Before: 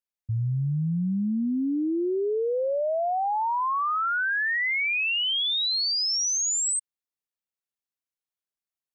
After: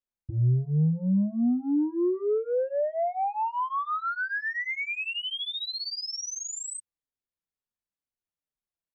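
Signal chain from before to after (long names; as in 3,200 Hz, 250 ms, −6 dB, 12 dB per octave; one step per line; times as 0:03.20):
spectral tilt −2.5 dB per octave
soft clipping −16.5 dBFS, distortion −20 dB
barber-pole flanger 4.9 ms −2.1 Hz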